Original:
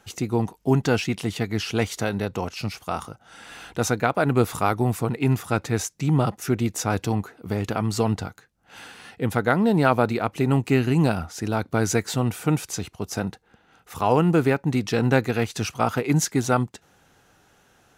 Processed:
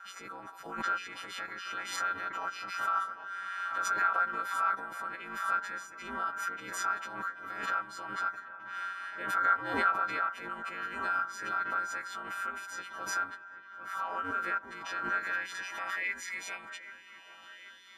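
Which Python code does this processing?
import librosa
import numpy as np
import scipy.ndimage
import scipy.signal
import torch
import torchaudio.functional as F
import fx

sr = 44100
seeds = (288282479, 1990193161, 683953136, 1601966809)

p1 = fx.freq_snap(x, sr, grid_st=3)
p2 = fx.notch(p1, sr, hz=2000.0, q=15.0)
p3 = fx.over_compress(p2, sr, threshold_db=-27.0, ratio=-0.5)
p4 = p2 + (p3 * 10.0 ** (2.0 / 20.0))
p5 = 10.0 ** (-6.5 / 20.0) * np.tanh(p4 / 10.0 ** (-6.5 / 20.0))
p6 = p5 * np.sin(2.0 * np.pi * 92.0 * np.arange(len(p5)) / sr)
p7 = fx.filter_sweep_bandpass(p6, sr, from_hz=1400.0, to_hz=3400.0, start_s=15.0, end_s=17.91, q=7.2)
p8 = p7 + fx.echo_wet_lowpass(p7, sr, ms=785, feedback_pct=63, hz=2200.0, wet_db=-14, dry=0)
y = fx.pre_swell(p8, sr, db_per_s=60.0)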